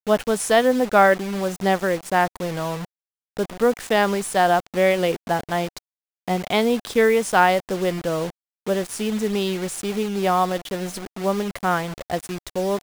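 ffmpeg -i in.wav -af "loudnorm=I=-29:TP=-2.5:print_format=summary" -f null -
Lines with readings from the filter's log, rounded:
Input Integrated:    -22.3 LUFS
Input True Peak:      -3.9 dBTP
Input LRA:             3.2 LU
Input Threshold:     -32.4 LUFS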